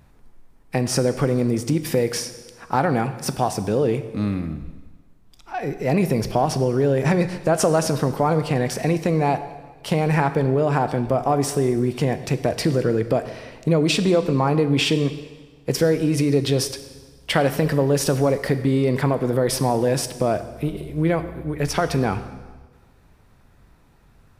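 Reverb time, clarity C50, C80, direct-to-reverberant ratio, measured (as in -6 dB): 1.4 s, 12.0 dB, 13.5 dB, 10.5 dB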